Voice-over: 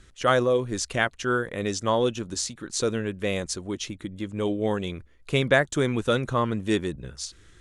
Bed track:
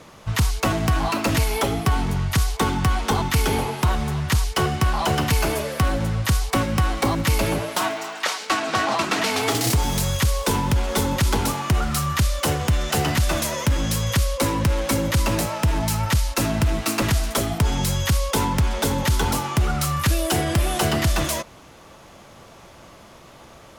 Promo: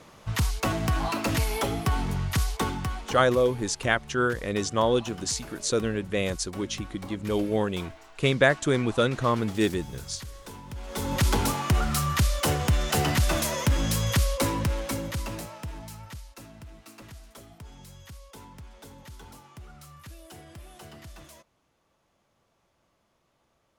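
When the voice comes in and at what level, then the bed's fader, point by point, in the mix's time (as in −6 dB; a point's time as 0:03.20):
2.90 s, 0.0 dB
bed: 0:02.57 −5.5 dB
0:03.47 −21.5 dB
0:10.66 −21.5 dB
0:11.20 −3 dB
0:14.33 −3 dB
0:16.52 −25.5 dB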